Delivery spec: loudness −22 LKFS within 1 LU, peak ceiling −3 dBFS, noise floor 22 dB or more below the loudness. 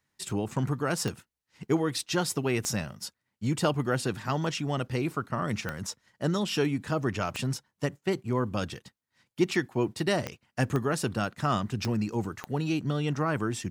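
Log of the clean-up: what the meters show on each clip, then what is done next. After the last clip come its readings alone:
number of clicks 8; integrated loudness −30.0 LKFS; sample peak −12.0 dBFS; target loudness −22.0 LKFS
→ click removal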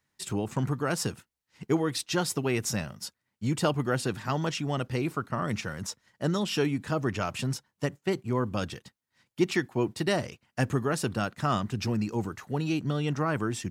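number of clicks 0; integrated loudness −30.0 LKFS; sample peak −12.0 dBFS; target loudness −22.0 LKFS
→ level +8 dB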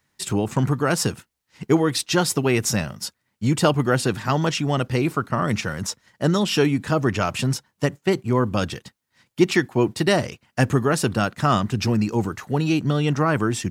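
integrated loudness −22.0 LKFS; sample peak −4.0 dBFS; background noise floor −75 dBFS

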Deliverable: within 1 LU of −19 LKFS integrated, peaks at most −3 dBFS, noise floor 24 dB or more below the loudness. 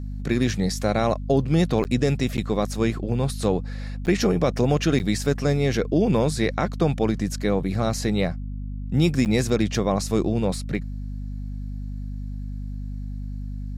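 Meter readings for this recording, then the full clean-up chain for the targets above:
number of dropouts 5; longest dropout 9.1 ms; mains hum 50 Hz; hum harmonics up to 250 Hz; level of the hum −28 dBFS; integrated loudness −23.5 LKFS; sample peak −8.0 dBFS; target loudness −19.0 LKFS
→ repair the gap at 0:01.84/0:02.37/0:04.06/0:04.99/0:09.25, 9.1 ms
hum removal 50 Hz, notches 5
level +4.5 dB

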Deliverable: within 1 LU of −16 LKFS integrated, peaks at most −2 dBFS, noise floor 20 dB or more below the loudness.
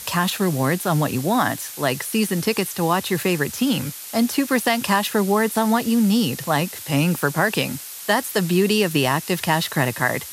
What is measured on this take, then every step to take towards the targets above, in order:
number of dropouts 2; longest dropout 1.2 ms; background noise floor −36 dBFS; target noise floor −41 dBFS; integrated loudness −21.0 LKFS; sample peak −4.5 dBFS; target loudness −16.0 LKFS
→ repair the gap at 0:08.50/0:09.85, 1.2 ms
noise reduction from a noise print 6 dB
level +5 dB
brickwall limiter −2 dBFS

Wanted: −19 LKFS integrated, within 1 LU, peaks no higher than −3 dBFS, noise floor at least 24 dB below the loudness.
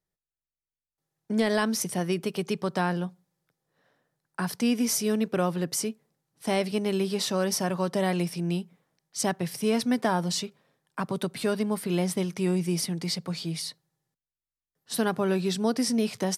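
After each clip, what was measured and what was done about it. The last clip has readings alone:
integrated loudness −28.0 LKFS; sample peak −12.5 dBFS; target loudness −19.0 LKFS
→ level +9 dB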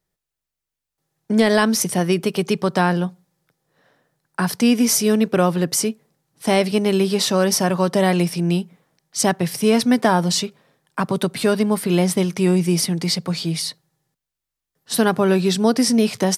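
integrated loudness −19.0 LKFS; sample peak −3.5 dBFS; background noise floor −85 dBFS

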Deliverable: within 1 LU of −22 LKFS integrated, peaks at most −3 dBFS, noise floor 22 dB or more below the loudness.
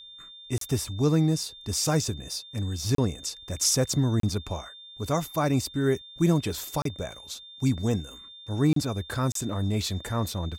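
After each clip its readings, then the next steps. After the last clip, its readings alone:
number of dropouts 6; longest dropout 33 ms; interfering tone 3,600 Hz; level of the tone −44 dBFS; integrated loudness −27.5 LKFS; sample peak −11.5 dBFS; target loudness −22.0 LKFS
→ repair the gap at 0:00.58/0:02.95/0:04.20/0:06.82/0:08.73/0:09.32, 33 ms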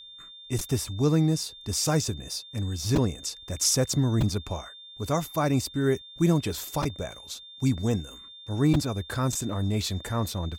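number of dropouts 0; interfering tone 3,600 Hz; level of the tone −44 dBFS
→ notch filter 3,600 Hz, Q 30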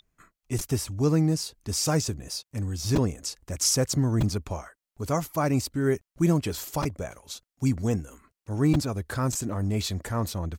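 interfering tone none found; integrated loudness −27.5 LKFS; sample peak −11.5 dBFS; target loudness −22.0 LKFS
→ level +5.5 dB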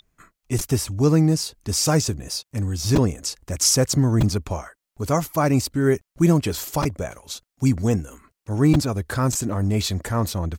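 integrated loudness −22.0 LKFS; sample peak −6.0 dBFS; background noise floor −84 dBFS

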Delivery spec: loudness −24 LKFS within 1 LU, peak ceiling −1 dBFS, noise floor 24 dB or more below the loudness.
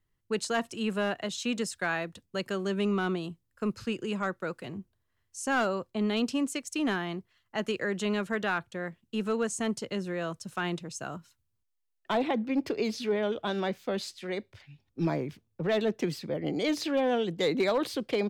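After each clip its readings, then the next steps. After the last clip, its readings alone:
share of clipped samples 0.2%; peaks flattened at −20.0 dBFS; integrated loudness −31.5 LKFS; sample peak −20.0 dBFS; target loudness −24.0 LKFS
→ clipped peaks rebuilt −20 dBFS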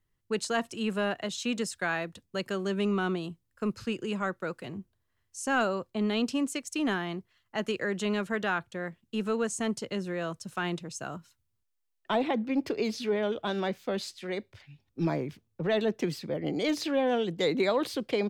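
share of clipped samples 0.0%; integrated loudness −31.5 LKFS; sample peak −16.0 dBFS; target loudness −24.0 LKFS
→ level +7.5 dB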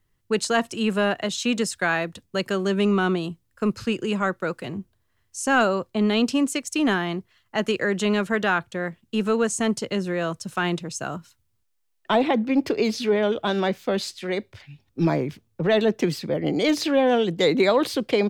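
integrated loudness −24.0 LKFS; sample peak −8.5 dBFS; background noise floor −70 dBFS

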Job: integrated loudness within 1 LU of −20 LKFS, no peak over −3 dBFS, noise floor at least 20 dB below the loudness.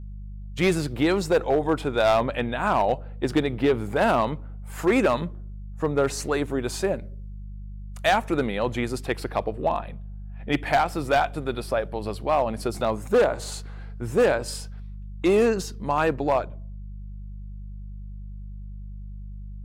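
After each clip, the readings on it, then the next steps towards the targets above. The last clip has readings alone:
share of clipped samples 1.0%; peaks flattened at −14.0 dBFS; mains hum 50 Hz; hum harmonics up to 200 Hz; level of the hum −34 dBFS; integrated loudness −24.5 LKFS; sample peak −14.0 dBFS; target loudness −20.0 LKFS
→ clipped peaks rebuilt −14 dBFS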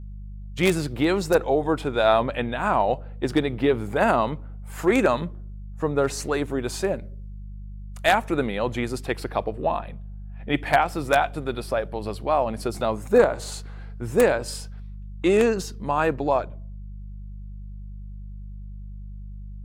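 share of clipped samples 0.0%; mains hum 50 Hz; hum harmonics up to 200 Hz; level of the hum −34 dBFS
→ hum removal 50 Hz, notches 4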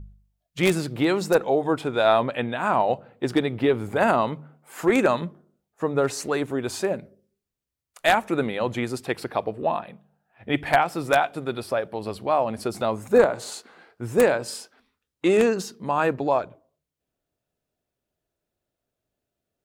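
mains hum none found; integrated loudness −24.0 LKFS; sample peak −5.0 dBFS; target loudness −20.0 LKFS
→ level +4 dB
brickwall limiter −3 dBFS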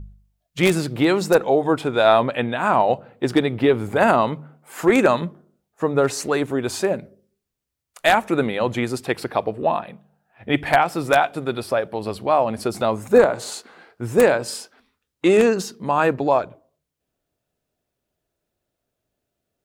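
integrated loudness −20.0 LKFS; sample peak −3.0 dBFS; background noise floor −81 dBFS

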